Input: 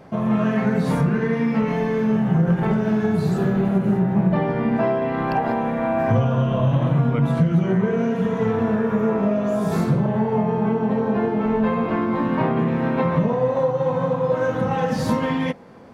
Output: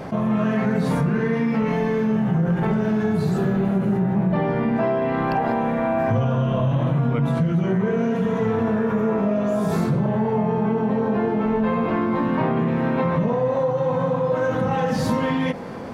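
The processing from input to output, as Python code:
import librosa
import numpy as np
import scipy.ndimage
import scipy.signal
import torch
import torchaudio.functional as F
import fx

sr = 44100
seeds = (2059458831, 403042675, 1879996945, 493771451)

y = fx.env_flatten(x, sr, amount_pct=50)
y = F.gain(torch.from_numpy(y), -4.0).numpy()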